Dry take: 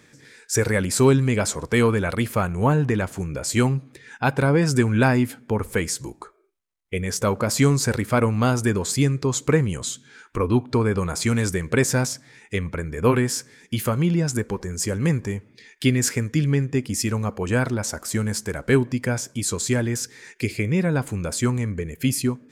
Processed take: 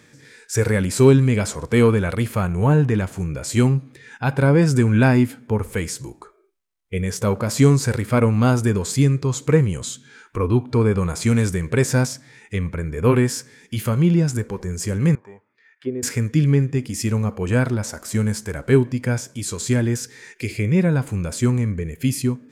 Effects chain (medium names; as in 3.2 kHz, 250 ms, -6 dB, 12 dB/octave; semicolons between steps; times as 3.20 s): harmonic-percussive split percussive -8 dB; 15.15–16.03 s: auto-wah 430–1500 Hz, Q 3, down, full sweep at -17.5 dBFS; trim +4.5 dB